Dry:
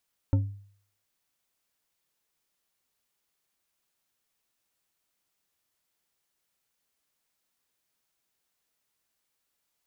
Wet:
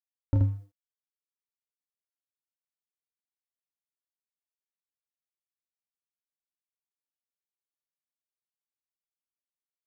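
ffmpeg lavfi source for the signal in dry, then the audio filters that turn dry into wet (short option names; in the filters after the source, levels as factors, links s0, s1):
-f lavfi -i "aevalsrc='0.141*pow(10,-3*t/0.55)*sin(2*PI*100*t)+0.0562*pow(10,-3*t/0.27)*sin(2*PI*275.7*t)+0.0224*pow(10,-3*t/0.169)*sin(2*PI*540.4*t)+0.00891*pow(10,-3*t/0.119)*sin(2*PI*893.3*t)+0.00355*pow(10,-3*t/0.09)*sin(2*PI*1334*t)':d=0.89:s=44100"
-filter_complex "[0:a]aeval=exprs='sgn(val(0))*max(abs(val(0))-0.00282,0)':c=same,asplit=2[s0][s1];[s1]aecho=0:1:28|79:0.596|0.668[s2];[s0][s2]amix=inputs=2:normalize=0"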